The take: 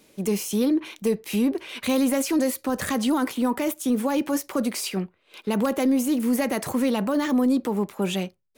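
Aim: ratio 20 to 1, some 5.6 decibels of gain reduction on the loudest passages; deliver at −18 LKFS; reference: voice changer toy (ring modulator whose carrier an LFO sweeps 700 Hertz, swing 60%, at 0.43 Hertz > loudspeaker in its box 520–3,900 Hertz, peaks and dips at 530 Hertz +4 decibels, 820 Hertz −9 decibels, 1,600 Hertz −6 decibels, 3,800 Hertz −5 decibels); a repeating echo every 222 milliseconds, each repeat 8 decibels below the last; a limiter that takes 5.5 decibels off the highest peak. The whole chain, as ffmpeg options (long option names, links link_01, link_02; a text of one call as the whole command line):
ffmpeg -i in.wav -af "acompressor=threshold=-23dB:ratio=20,alimiter=limit=-21.5dB:level=0:latency=1,aecho=1:1:222|444|666|888|1110:0.398|0.159|0.0637|0.0255|0.0102,aeval=exprs='val(0)*sin(2*PI*700*n/s+700*0.6/0.43*sin(2*PI*0.43*n/s))':channel_layout=same,highpass=520,equalizer=frequency=530:width_type=q:width=4:gain=4,equalizer=frequency=820:width_type=q:width=4:gain=-9,equalizer=frequency=1600:width_type=q:width=4:gain=-6,equalizer=frequency=3800:width_type=q:width=4:gain=-5,lowpass=frequency=3900:width=0.5412,lowpass=frequency=3900:width=1.3066,volume=18.5dB" out.wav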